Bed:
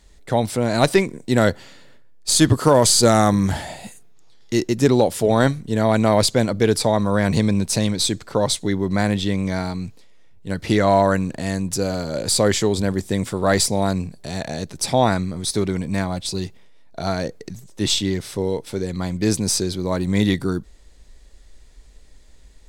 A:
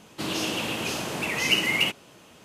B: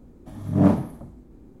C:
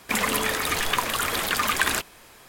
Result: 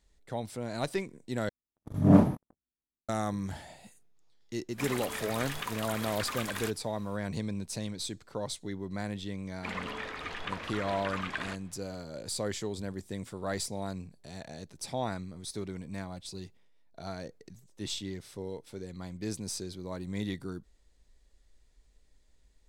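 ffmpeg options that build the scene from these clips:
-filter_complex "[3:a]asplit=2[a][b];[0:a]volume=-16.5dB[c];[2:a]agate=range=-53dB:threshold=-36dB:ratio=16:release=25:detection=rms[d];[a]alimiter=limit=-9.5dB:level=0:latency=1:release=71[e];[b]lowpass=3.3k[f];[c]asplit=2[g][h];[g]atrim=end=1.494[i];[d]atrim=end=1.6,asetpts=PTS-STARTPTS,volume=-2dB[j];[h]atrim=start=3.086[k];[e]atrim=end=2.48,asetpts=PTS-STARTPTS,volume=-13dB,afade=t=in:d=0.004:c=hsin,afade=t=out:st=2.476:d=0.004:c=hsin,adelay=206829S[l];[f]atrim=end=2.48,asetpts=PTS-STARTPTS,volume=-12.5dB,afade=t=in:d=0.004:c=hsin,afade=t=out:st=2.476:d=0.004:c=hsin,adelay=420714S[m];[i][j]acrossfade=d=0.004:c1=hsin:c2=hsin[n];[n][k]acrossfade=d=0.004:c1=hsin:c2=hsin[o];[o][l][m]amix=inputs=3:normalize=0"

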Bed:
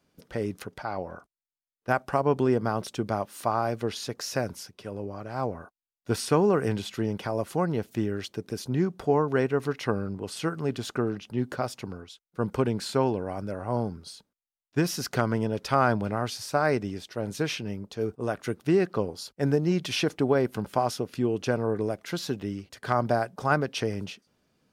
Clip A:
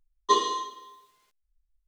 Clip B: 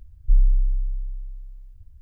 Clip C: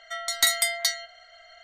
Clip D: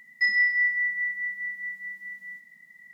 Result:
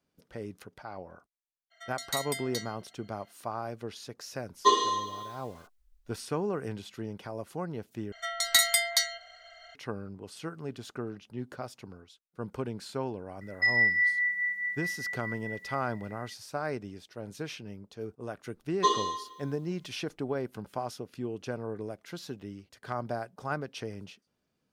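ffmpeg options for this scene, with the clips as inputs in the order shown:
-filter_complex "[3:a]asplit=2[a][b];[1:a]asplit=2[c][d];[0:a]volume=-9.5dB[e];[a]highpass=f=360:p=1[f];[c]dynaudnorm=f=160:g=3:m=15dB[g];[e]asplit=2[h][i];[h]atrim=end=8.124[j];[b]atrim=end=1.63,asetpts=PTS-STARTPTS,volume=-1dB[k];[i]atrim=start=9.746[l];[f]atrim=end=1.63,asetpts=PTS-STARTPTS,volume=-12.5dB,afade=t=in:d=0.02,afade=t=out:st=1.61:d=0.02,adelay=1700[m];[g]atrim=end=1.87,asetpts=PTS-STARTPTS,volume=-7dB,afade=t=in:d=0.004:c=hsin,afade=t=out:st=1.866:d=0.004:c=hsin,adelay=4360[n];[4:a]atrim=end=2.93,asetpts=PTS-STARTPTS,volume=-2dB,afade=t=in:d=0.004:c=hsin,afade=t=out:st=2.926:d=0.004:c=hsin,adelay=13410[o];[d]atrim=end=1.87,asetpts=PTS-STARTPTS,volume=-3dB,afade=t=in:d=0.004:c=hsin,afade=t=out:st=1.866:d=0.004:c=hsin,adelay=18540[p];[j][k]acrossfade=d=0.004:c1=hsin:c2=hsin[q];[q][l]acrossfade=d=0.004:c1=hsin:c2=hsin[r];[r][m][n][o][p]amix=inputs=5:normalize=0"

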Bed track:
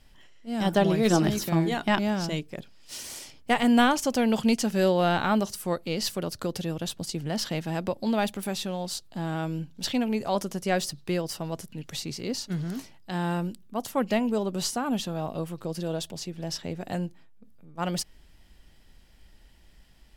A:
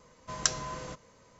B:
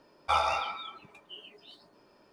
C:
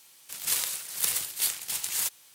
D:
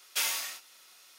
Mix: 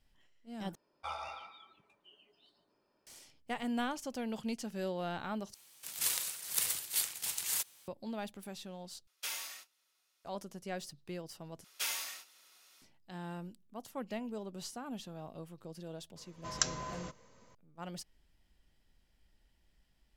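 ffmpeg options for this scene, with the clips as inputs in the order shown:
-filter_complex "[4:a]asplit=2[a][b];[0:a]volume=-15dB[c];[2:a]aecho=1:1:148:0.168[d];[a]agate=range=-11dB:threshold=-45dB:ratio=16:release=100:detection=peak[e];[c]asplit=5[f][g][h][i][j];[f]atrim=end=0.754[k];[d]atrim=end=2.32,asetpts=PTS-STARTPTS,volume=-15dB[l];[g]atrim=start=3.066:end=5.544[m];[3:a]atrim=end=2.34,asetpts=PTS-STARTPTS,volume=-5.5dB[n];[h]atrim=start=7.876:end=9.074[o];[e]atrim=end=1.18,asetpts=PTS-STARTPTS,volume=-10dB[p];[i]atrim=start=10.246:end=11.644[q];[b]atrim=end=1.18,asetpts=PTS-STARTPTS,volume=-6.5dB[r];[j]atrim=start=12.816[s];[1:a]atrim=end=1.39,asetpts=PTS-STARTPTS,volume=-4dB,afade=t=in:d=0.004:c=hsin,afade=t=out:st=1.386:d=0.004:c=hsin,adelay=16160[t];[k][l]acrossfade=d=0.004:c1=hsin:c2=hsin[u];[u][m]acrossfade=d=0.004:c1=hsin:c2=hsin[v];[v][n]acrossfade=d=0.004:c1=hsin:c2=hsin[w];[w][o]acrossfade=d=0.004:c1=hsin:c2=hsin[x];[x][p]acrossfade=d=0.004:c1=hsin:c2=hsin[y];[y][q]acrossfade=d=0.004:c1=hsin:c2=hsin[z];[z][r]acrossfade=d=0.004:c1=hsin:c2=hsin[aa];[aa][s]acrossfade=d=0.004:c1=hsin:c2=hsin[ab];[ab][t]amix=inputs=2:normalize=0"

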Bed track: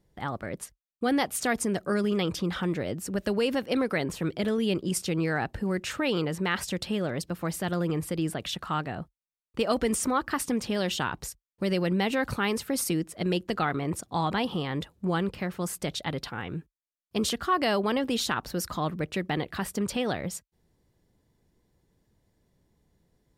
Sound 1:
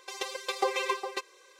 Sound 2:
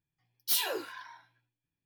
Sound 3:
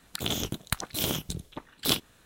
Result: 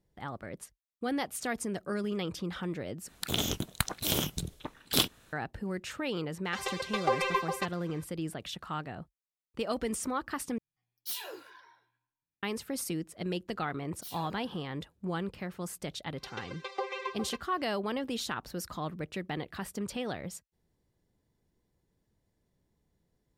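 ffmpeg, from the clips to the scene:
-filter_complex "[1:a]asplit=2[a][b];[2:a]asplit=2[c][d];[0:a]volume=-7dB[e];[a]asplit=2[f][g];[g]highpass=f=720:p=1,volume=10dB,asoftclip=type=tanh:threshold=-13dB[h];[f][h]amix=inputs=2:normalize=0,lowpass=f=1.5k:p=1,volume=-6dB[i];[c]asplit=2[j][k];[k]adelay=163,lowpass=f=2k:p=1,volume=-22dB,asplit=2[l][m];[m]adelay=163,lowpass=f=2k:p=1,volume=0.41,asplit=2[n][o];[o]adelay=163,lowpass=f=2k:p=1,volume=0.41[p];[j][l][n][p]amix=inputs=4:normalize=0[q];[b]lowpass=3.6k[r];[e]asplit=3[s][t][u];[s]atrim=end=3.084[v];[3:a]atrim=end=2.25,asetpts=PTS-STARTPTS,volume=-0.5dB[w];[t]atrim=start=5.326:end=10.584[x];[q]atrim=end=1.85,asetpts=PTS-STARTPTS,volume=-9dB[y];[u]atrim=start=12.426[z];[i]atrim=end=1.59,asetpts=PTS-STARTPTS,afade=t=in:d=0.004:c=hsin,afade=t=out:st=1.586:d=0.004:c=hsin,adelay=6450[aa];[d]atrim=end=1.85,asetpts=PTS-STARTPTS,volume=-17.5dB,afade=t=in:d=0.004:c=hsin,afade=t=out:st=1.846:d=0.004:c=hsin,adelay=13540[ab];[r]atrim=end=1.59,asetpts=PTS-STARTPTS,volume=-6.5dB,afade=t=in:d=0.004:c=hsin,afade=t=out:st=1.586:d=0.004:c=hsin,adelay=16160[ac];[v][w]acrossfade=d=0.004:c1=hsin:c2=hsin[ad];[ad][x]acrossfade=d=0.004:c1=hsin:c2=hsin[ae];[ae][y]acrossfade=d=0.004:c1=hsin:c2=hsin[af];[af][z]acrossfade=d=0.004:c1=hsin:c2=hsin[ag];[ag][aa][ab][ac]amix=inputs=4:normalize=0"

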